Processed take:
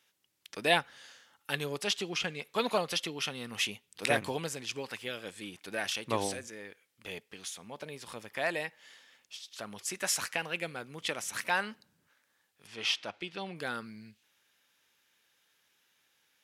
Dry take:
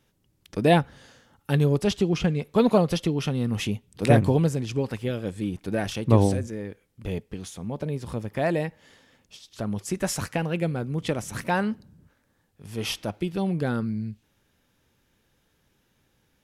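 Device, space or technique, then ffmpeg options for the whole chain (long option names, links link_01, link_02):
filter by subtraction: -filter_complex "[0:a]asplit=2[link_01][link_02];[link_02]lowpass=2400,volume=-1[link_03];[link_01][link_03]amix=inputs=2:normalize=0,asettb=1/sr,asplit=3[link_04][link_05][link_06];[link_04]atrim=end=12.674[link_07];[link_05]atrim=start=12.67:end=13.56,asetpts=PTS-STARTPTS,afade=type=in:duration=0.004:curve=qsin,afade=type=out:start_time=0.886:duration=0.004:curve=qsin,lowpass=5100[link_08];[link_06]atrim=start=13.556[link_09];[link_07][link_08]acrossfade=duration=0.004:curve1=hsin:curve2=qsin[link_10];[link_10][link_09]acrossfade=duration=0.004:curve1=qsin:curve2=hsin"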